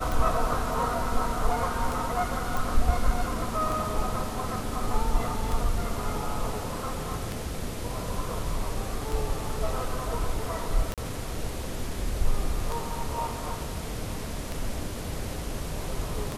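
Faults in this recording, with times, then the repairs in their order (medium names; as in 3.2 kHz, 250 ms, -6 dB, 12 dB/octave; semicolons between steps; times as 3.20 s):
tick 33 1/3 rpm
2.57 s: pop
10.94–10.98 s: dropout 37 ms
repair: de-click; interpolate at 10.94 s, 37 ms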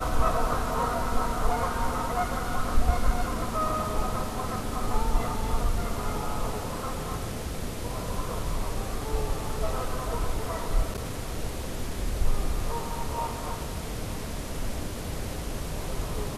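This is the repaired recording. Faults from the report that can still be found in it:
nothing left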